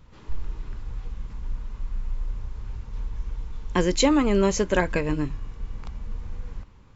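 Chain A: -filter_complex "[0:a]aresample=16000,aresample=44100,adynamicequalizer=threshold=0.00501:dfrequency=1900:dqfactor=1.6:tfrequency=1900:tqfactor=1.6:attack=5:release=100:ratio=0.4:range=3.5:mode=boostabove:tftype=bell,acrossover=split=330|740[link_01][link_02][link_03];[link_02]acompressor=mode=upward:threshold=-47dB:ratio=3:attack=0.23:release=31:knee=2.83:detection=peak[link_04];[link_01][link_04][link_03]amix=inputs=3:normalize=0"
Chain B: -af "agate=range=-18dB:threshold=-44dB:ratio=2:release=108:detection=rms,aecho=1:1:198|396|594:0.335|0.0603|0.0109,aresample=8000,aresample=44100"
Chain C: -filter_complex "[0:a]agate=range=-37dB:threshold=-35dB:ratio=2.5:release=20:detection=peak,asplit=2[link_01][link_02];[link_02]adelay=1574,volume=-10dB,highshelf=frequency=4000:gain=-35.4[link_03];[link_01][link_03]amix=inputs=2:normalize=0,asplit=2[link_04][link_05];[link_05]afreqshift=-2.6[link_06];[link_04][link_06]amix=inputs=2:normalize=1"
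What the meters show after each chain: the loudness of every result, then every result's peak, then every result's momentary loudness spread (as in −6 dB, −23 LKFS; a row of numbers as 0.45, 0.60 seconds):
−25.0, −27.5, −30.0 LKFS; −5.5, −6.5, −11.5 dBFS; 19, 17, 17 LU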